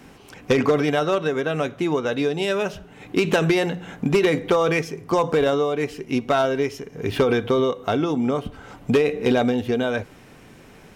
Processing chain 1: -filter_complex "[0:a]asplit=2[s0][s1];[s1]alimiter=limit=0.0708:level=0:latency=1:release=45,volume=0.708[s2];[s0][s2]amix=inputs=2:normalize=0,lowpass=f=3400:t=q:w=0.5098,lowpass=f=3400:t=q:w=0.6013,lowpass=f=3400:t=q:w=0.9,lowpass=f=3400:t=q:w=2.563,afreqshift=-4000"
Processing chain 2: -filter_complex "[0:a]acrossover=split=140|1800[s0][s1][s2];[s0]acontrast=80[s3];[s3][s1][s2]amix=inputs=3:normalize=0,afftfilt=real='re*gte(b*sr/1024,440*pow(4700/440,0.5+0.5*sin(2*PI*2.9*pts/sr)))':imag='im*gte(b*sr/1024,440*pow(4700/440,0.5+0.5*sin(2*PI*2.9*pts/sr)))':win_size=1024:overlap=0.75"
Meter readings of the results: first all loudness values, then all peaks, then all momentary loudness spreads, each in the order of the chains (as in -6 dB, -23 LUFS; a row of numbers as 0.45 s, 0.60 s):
-16.5 LUFS, -31.0 LUFS; -4.0 dBFS, -8.5 dBFS; 7 LU, 15 LU